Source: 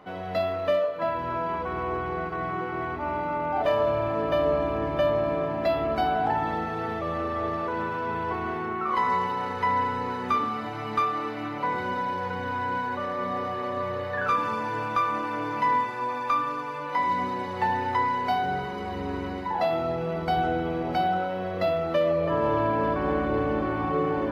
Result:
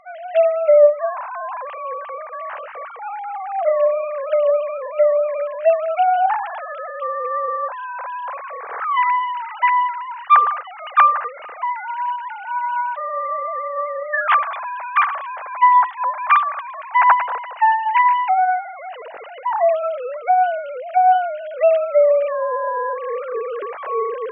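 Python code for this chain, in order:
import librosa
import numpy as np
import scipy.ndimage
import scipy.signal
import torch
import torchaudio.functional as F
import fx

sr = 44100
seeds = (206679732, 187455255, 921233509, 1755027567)

y = fx.sine_speech(x, sr)
y = fx.high_shelf(y, sr, hz=2600.0, db=6.5)
y = F.gain(torch.from_numpy(y), 7.0).numpy()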